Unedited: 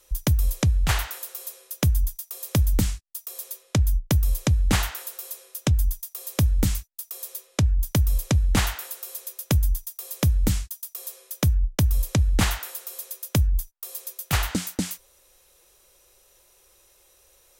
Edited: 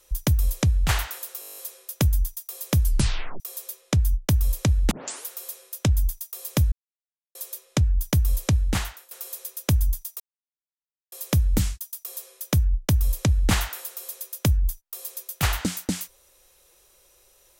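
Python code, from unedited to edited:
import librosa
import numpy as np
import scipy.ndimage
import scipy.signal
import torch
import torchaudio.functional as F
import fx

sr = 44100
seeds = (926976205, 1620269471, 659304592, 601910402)

y = fx.edit(x, sr, fx.stutter(start_s=1.4, slice_s=0.02, count=10),
    fx.tape_stop(start_s=2.64, length_s=0.58),
    fx.tape_start(start_s=4.73, length_s=0.36),
    fx.silence(start_s=6.54, length_s=0.63),
    fx.fade_out_to(start_s=8.34, length_s=0.59, floor_db=-20.5),
    fx.insert_silence(at_s=10.02, length_s=0.92), tone=tone)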